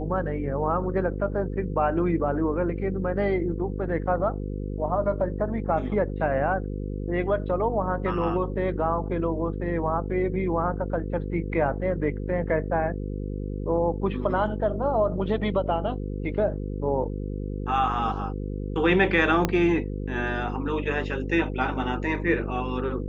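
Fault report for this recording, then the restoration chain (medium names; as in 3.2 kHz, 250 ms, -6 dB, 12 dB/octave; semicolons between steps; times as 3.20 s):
buzz 50 Hz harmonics 10 -31 dBFS
19.45 s: pop -8 dBFS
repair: de-click; de-hum 50 Hz, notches 10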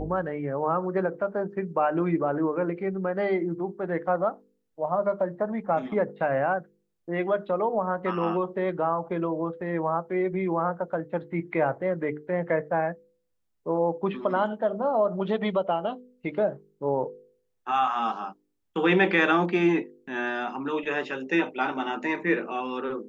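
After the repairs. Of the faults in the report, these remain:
19.45 s: pop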